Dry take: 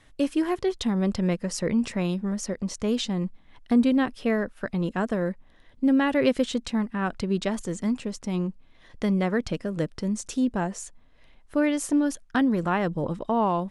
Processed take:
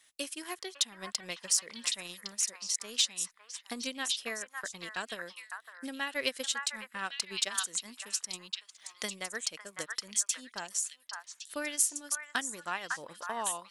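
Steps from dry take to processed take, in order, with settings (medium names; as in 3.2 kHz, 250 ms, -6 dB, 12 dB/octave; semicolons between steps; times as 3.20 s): differentiator; transient shaper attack +6 dB, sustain -7 dB; in parallel at -7.5 dB: saturation -26 dBFS, distortion -13 dB; on the sum: repeats whose band climbs or falls 555 ms, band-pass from 1.3 kHz, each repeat 1.4 oct, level -1 dB; random flutter of the level, depth 55%; trim +4.5 dB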